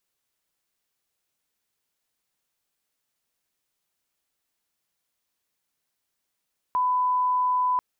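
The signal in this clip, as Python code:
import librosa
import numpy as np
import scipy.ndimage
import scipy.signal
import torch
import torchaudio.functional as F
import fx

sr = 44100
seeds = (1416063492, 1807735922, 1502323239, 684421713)

y = fx.lineup_tone(sr, length_s=1.04, level_db=-20.0)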